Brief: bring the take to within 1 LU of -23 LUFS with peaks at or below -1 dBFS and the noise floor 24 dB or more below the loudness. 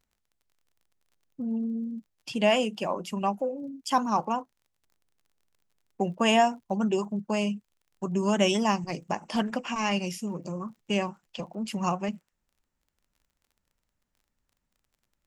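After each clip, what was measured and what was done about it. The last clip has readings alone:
ticks 29/s; loudness -28.5 LUFS; peak -9.0 dBFS; loudness target -23.0 LUFS
-> de-click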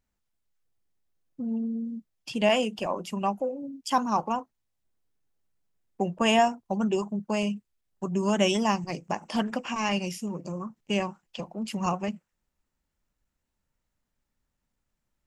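ticks 0/s; loudness -28.5 LUFS; peak -9.0 dBFS; loudness target -23.0 LUFS
-> gain +5.5 dB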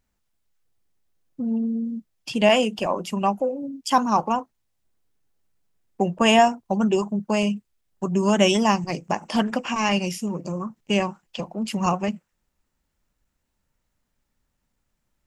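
loudness -23.0 LUFS; peak -3.5 dBFS; noise floor -76 dBFS

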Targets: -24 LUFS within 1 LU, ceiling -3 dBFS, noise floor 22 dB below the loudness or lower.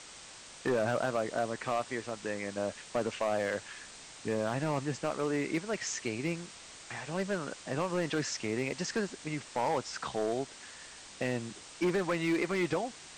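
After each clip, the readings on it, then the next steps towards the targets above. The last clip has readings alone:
clipped 1.2%; flat tops at -24.0 dBFS; noise floor -50 dBFS; noise floor target -56 dBFS; loudness -34.0 LUFS; peak -24.0 dBFS; loudness target -24.0 LUFS
-> clip repair -24 dBFS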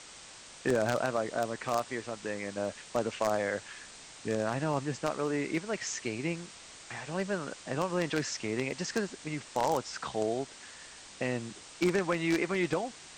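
clipped 0.0%; noise floor -50 dBFS; noise floor target -55 dBFS
-> denoiser 6 dB, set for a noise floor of -50 dBFS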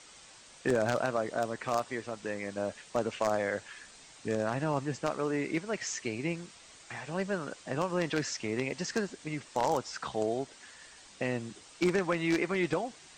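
noise floor -55 dBFS; loudness -33.0 LUFS; peak -15.0 dBFS; loudness target -24.0 LUFS
-> gain +9 dB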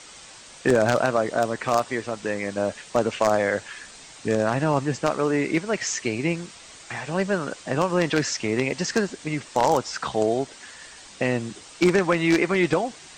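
loudness -24.0 LUFS; peak -6.0 dBFS; noise floor -46 dBFS

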